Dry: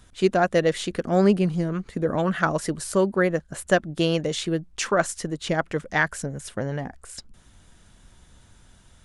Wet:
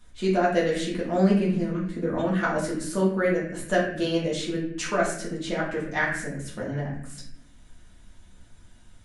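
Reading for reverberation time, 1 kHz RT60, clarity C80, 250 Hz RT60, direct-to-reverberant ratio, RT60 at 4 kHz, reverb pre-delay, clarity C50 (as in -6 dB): 0.70 s, 0.60 s, 7.5 dB, 1.3 s, -6.0 dB, 0.55 s, 3 ms, 4.0 dB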